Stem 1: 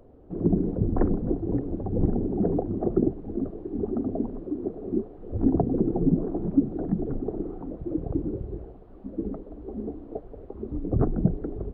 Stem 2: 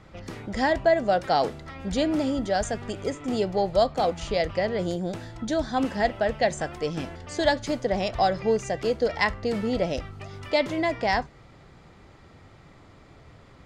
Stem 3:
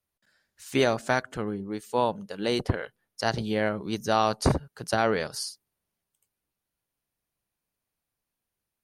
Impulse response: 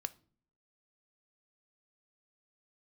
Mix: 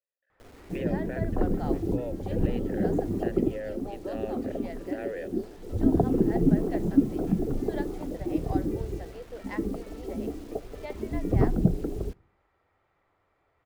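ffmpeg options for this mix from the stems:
-filter_complex "[0:a]acrusher=bits=8:mix=0:aa=0.000001,adelay=400,volume=0.794,asplit=2[s0][s1];[s1]volume=0.473[s2];[1:a]adelay=300,volume=0.126,asplit=2[s3][s4];[s4]volume=0.501[s5];[2:a]asplit=3[s6][s7][s8];[s6]bandpass=f=530:t=q:w=8,volume=1[s9];[s7]bandpass=f=1840:t=q:w=8,volume=0.501[s10];[s8]bandpass=f=2480:t=q:w=8,volume=0.355[s11];[s9][s10][s11]amix=inputs=3:normalize=0,volume=1.26,asplit=2[s12][s13];[s13]apad=whole_len=534972[s14];[s0][s14]sidechaincompress=threshold=0.0178:ratio=8:attack=16:release=1110[s15];[s3][s12]amix=inputs=2:normalize=0,highpass=450,lowpass=2500,alimiter=level_in=1.78:limit=0.0631:level=0:latency=1,volume=0.562,volume=1[s16];[3:a]atrim=start_sample=2205[s17];[s2][s5]amix=inputs=2:normalize=0[s18];[s18][s17]afir=irnorm=-1:irlink=0[s19];[s15][s16][s19]amix=inputs=3:normalize=0"

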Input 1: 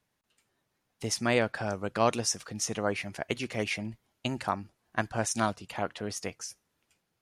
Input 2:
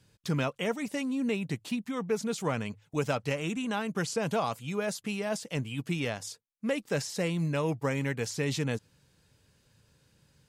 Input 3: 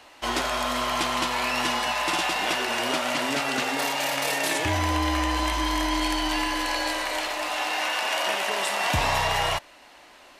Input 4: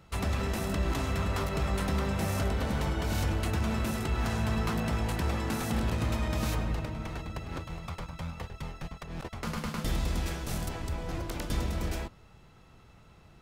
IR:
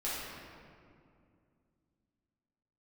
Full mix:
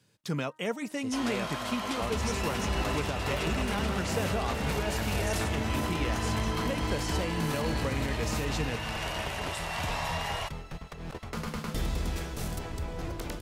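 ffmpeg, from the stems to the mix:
-filter_complex "[0:a]volume=0.335[s0];[1:a]highpass=130,bandreject=f=310.5:t=h:w=4,bandreject=f=621:t=h:w=4,bandreject=f=931.5:t=h:w=4,bandreject=f=1242:t=h:w=4,bandreject=f=1552.5:t=h:w=4,bandreject=f=1863:t=h:w=4,volume=0.891[s1];[2:a]adelay=900,volume=0.335[s2];[3:a]equalizer=f=440:t=o:w=0.23:g=5,adelay=1900,volume=0.891[s3];[s0][s1][s2][s3]amix=inputs=4:normalize=0,alimiter=limit=0.106:level=0:latency=1:release=238"

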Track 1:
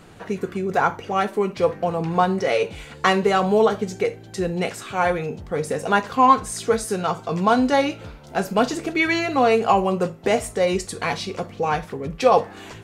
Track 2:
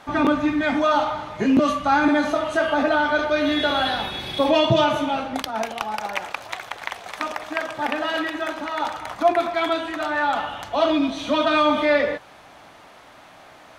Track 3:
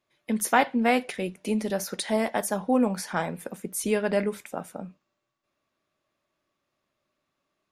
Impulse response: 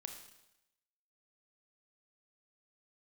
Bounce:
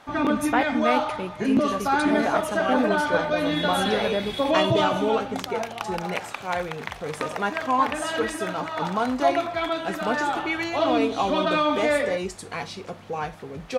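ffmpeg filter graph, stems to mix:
-filter_complex "[0:a]adelay=1500,volume=0.422[s0];[1:a]volume=0.631[s1];[2:a]highshelf=f=7700:g=-8.5,volume=0.794[s2];[s0][s1][s2]amix=inputs=3:normalize=0"

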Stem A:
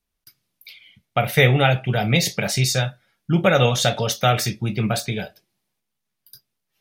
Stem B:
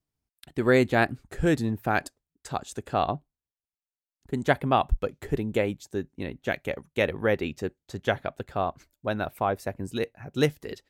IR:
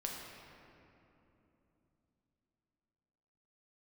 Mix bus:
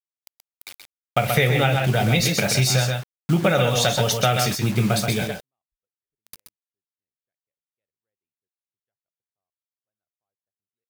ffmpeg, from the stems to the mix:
-filter_complex "[0:a]acrusher=bits=5:mix=0:aa=0.000001,volume=1.33,asplit=3[s0][s1][s2];[s1]volume=0.473[s3];[1:a]equalizer=f=260:w=1.5:g=-5,asoftclip=type=tanh:threshold=0.211,adelay=800,volume=0.422[s4];[s2]apad=whole_len=515840[s5];[s4][s5]sidechaingate=range=0.00126:threshold=0.0224:ratio=16:detection=peak[s6];[s3]aecho=0:1:128:1[s7];[s0][s6][s7]amix=inputs=3:normalize=0,acompressor=threshold=0.178:ratio=5"

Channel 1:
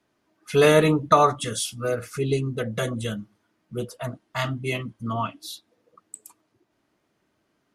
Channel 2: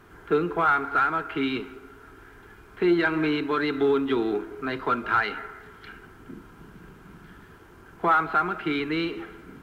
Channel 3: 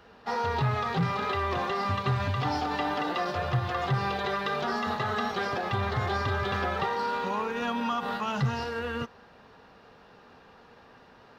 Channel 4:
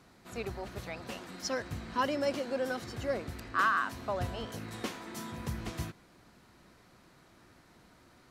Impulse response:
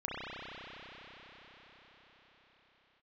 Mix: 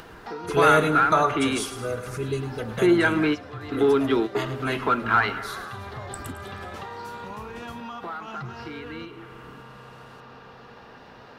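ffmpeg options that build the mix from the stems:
-filter_complex "[0:a]volume=0.596,asplit=3[s0][s1][s2];[s1]volume=0.266[s3];[1:a]volume=1.33[s4];[2:a]volume=0.168,asplit=2[s5][s6];[s6]volume=0.141[s7];[3:a]adelay=1900,volume=0.188[s8];[s2]apad=whole_len=424572[s9];[s4][s9]sidechaingate=range=0.0891:threshold=0.00251:ratio=16:detection=peak[s10];[4:a]atrim=start_sample=2205[s11];[s7][s11]afir=irnorm=-1:irlink=0[s12];[s3]aecho=0:1:106|212|318|424|530|636:1|0.45|0.202|0.0911|0.041|0.0185[s13];[s0][s10][s5][s8][s12][s13]amix=inputs=6:normalize=0,acompressor=mode=upward:threshold=0.0398:ratio=2.5"

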